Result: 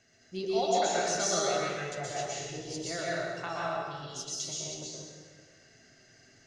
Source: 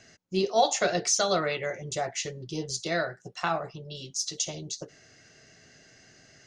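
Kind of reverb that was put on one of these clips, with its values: plate-style reverb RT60 1.6 s, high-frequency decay 0.8×, pre-delay 110 ms, DRR -6 dB; trim -10.5 dB

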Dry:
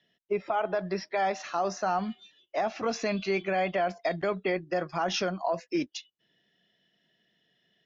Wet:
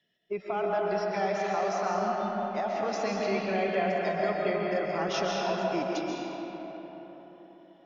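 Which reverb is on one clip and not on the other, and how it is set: algorithmic reverb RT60 4.4 s, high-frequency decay 0.5×, pre-delay 95 ms, DRR -3 dB; trim -4.5 dB

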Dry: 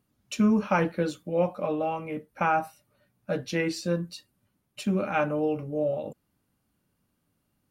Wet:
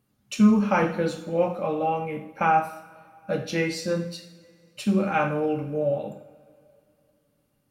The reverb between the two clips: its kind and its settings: two-slope reverb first 0.56 s, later 2.6 s, from -20 dB, DRR 3.5 dB; trim +1 dB

